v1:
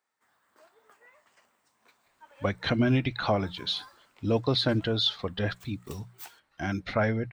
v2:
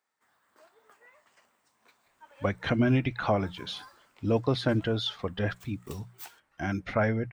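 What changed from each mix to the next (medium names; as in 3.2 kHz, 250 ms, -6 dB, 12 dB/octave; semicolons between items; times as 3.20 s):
speech: add peaking EQ 4.1 kHz -11 dB 0.5 oct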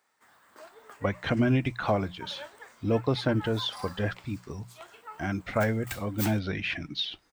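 speech: entry -1.40 s; background +10.0 dB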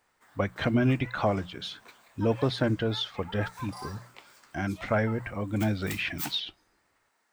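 speech: entry -0.65 s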